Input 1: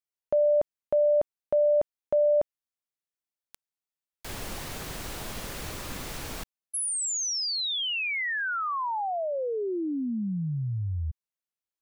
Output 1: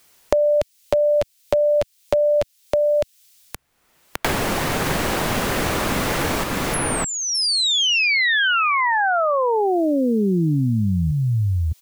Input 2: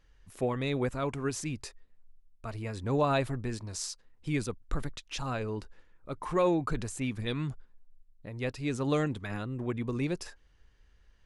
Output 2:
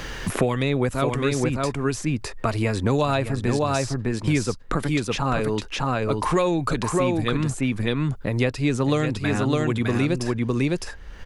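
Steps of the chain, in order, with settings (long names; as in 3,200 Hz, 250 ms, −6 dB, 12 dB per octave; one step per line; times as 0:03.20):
on a send: single-tap delay 609 ms −3.5 dB
on the sum: multiband upward and downward compressor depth 100%
level +8 dB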